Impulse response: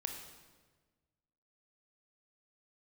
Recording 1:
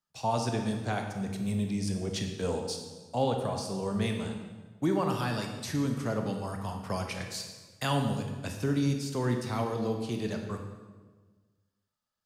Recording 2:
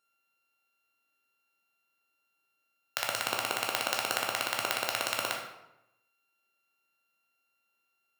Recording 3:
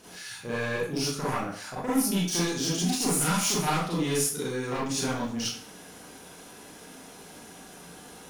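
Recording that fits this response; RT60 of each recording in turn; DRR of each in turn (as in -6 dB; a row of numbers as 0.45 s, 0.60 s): 1; 1.4 s, 0.90 s, 0.50 s; 3.5 dB, 0.0 dB, -8.0 dB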